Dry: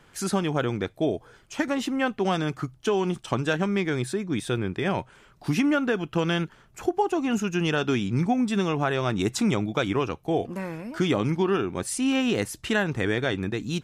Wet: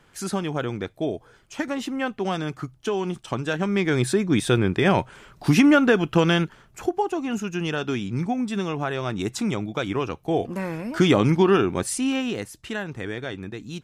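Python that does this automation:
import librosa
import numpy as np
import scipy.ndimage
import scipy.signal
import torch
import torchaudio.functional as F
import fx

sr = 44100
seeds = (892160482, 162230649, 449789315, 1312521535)

y = fx.gain(x, sr, db=fx.line((3.48, -1.5), (4.08, 7.0), (6.09, 7.0), (7.24, -2.0), (9.75, -2.0), (10.99, 6.0), (11.69, 6.0), (12.48, -6.0)))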